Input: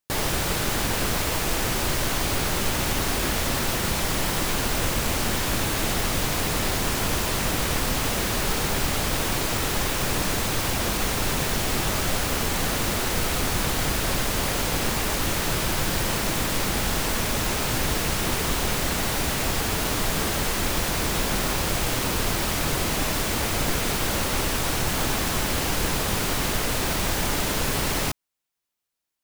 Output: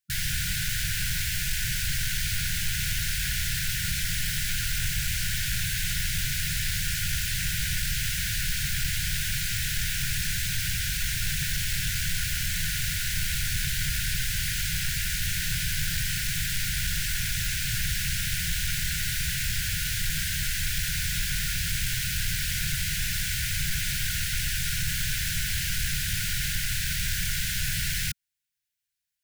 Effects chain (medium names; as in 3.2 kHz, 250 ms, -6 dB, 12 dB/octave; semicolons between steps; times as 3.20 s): brick-wall FIR band-stop 180–1400 Hz; saturation -16.5 dBFS, distortion -23 dB; trim -1 dB